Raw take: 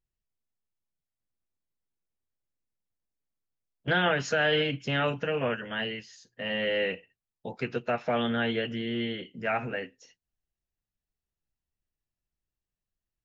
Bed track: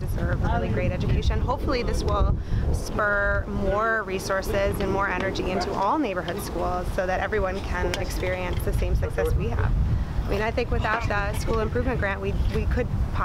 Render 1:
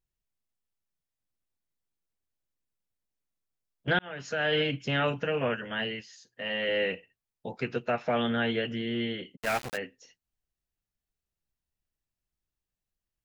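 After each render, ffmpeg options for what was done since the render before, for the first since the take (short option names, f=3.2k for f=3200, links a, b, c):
-filter_complex "[0:a]asettb=1/sr,asplit=3[a][b][c];[a]atrim=end=6.014[d];[b]atrim=start=6.01:end=6.69,asetpts=PTS-STARTPTS,afade=t=in:d=0.004:c=qsin,afade=t=out:st=0.676:d=0.004:c=qsin,lowshelf=f=260:g=-8[e];[c]atrim=start=6.686[f];[d][e]acrossfade=d=0.004:c1=hsin:c2=qsin[g];[g][f]acrossfade=d=0.004:c1=qsin:c2=hsin,asplit=3[h][i][j];[h]afade=t=out:st=9.35:d=0.02[k];[i]aeval=exprs='val(0)*gte(abs(val(0)),0.0299)':c=same,afade=t=in:st=9.35:d=0.02,afade=t=out:st=9.76:d=0.02[l];[j]afade=t=in:st=9.76:d=0.02[m];[k][l][m]amix=inputs=3:normalize=0,asplit=2[n][o];[n]atrim=end=3.99,asetpts=PTS-STARTPTS,afade=t=out:st=3.986:d=0.004:c=hsin[p];[o]atrim=start=3.99,asetpts=PTS-STARTPTS,afade=t=in:d=0.65[q];[p][q]concat=n=2:v=0:a=1"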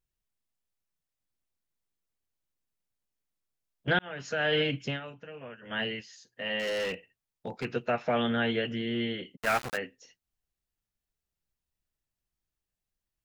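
-filter_complex "[0:a]asettb=1/sr,asplit=3[a][b][c];[a]atrim=end=6.594[d];[b]atrim=start=6.59:end=7.65,asetpts=PTS-STARTPTS,afade=t=in:d=0.004:c=qsin,afade=t=out:st=1.056:d=0.004:c=qsin,volume=28.5dB,asoftclip=hard,volume=-28.5dB[e];[c]atrim=start=7.646[f];[d][e]acrossfade=d=0.004:c1=hsin:c2=qsin[g];[g][f]acrossfade=d=0.004:c1=qsin:c2=hsin,asettb=1/sr,asplit=3[h][i][j];[h]atrim=end=9.404[k];[i]atrim=start=9.4:end=9.81,asetpts=PTS-STARTPTS,afade=t=in:d=0.004:c=qsin,afade=t=out:st=0.406:d=0.004:c=qsin,equalizer=f=1.3k:w=1.9:g=5[l];[j]atrim=start=9.806[m];[k][l]acrossfade=d=0.004:c1=hsin:c2=qsin[n];[n][m]acrossfade=d=0.004:c1=qsin:c2=hsin,asplit=3[o][p][q];[o]atrim=end=5,asetpts=PTS-STARTPTS,afade=t=out:st=4.86:d=0.14:silence=0.16788[r];[p]atrim=start=5:end=5.61,asetpts=PTS-STARTPTS,volume=-15.5dB[s];[q]atrim=start=5.61,asetpts=PTS-STARTPTS,afade=t=in:d=0.14:silence=0.16788[t];[r][s][t]concat=n=3:v=0:a=1"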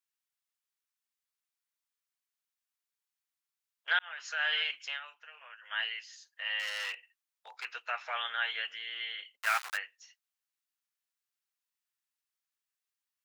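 -af "highpass=f=1k:w=0.5412,highpass=f=1k:w=1.3066"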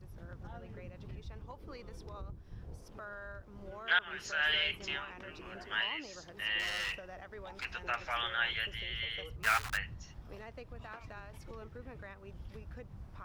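-filter_complex "[1:a]volume=-23.5dB[a];[0:a][a]amix=inputs=2:normalize=0"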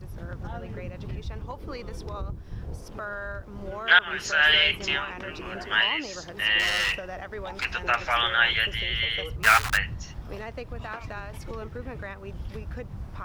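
-af "volume=11.5dB"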